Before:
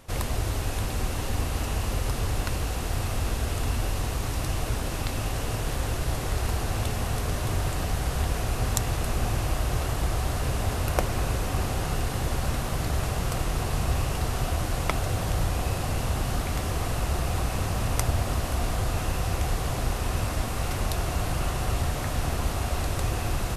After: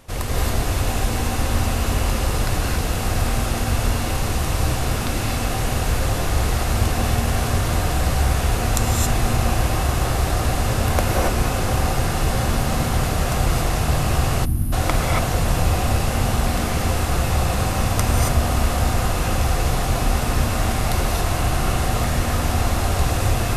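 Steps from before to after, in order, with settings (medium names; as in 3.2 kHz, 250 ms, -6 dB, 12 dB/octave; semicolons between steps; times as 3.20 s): gated-style reverb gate 300 ms rising, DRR -4 dB; time-frequency box 14.45–14.73 s, 360–9200 Hz -21 dB; trim +2.5 dB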